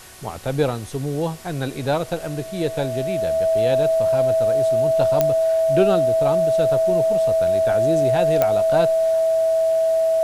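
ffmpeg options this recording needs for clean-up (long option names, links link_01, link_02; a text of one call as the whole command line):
ffmpeg -i in.wav -af "adeclick=threshold=4,bandreject=frequency=370.9:width_type=h:width=4,bandreject=frequency=741.8:width_type=h:width=4,bandreject=frequency=1112.7:width_type=h:width=4,bandreject=frequency=1483.6:width_type=h:width=4,bandreject=frequency=1854.5:width_type=h:width=4,bandreject=frequency=650:width=30,afwtdn=0.0079" out.wav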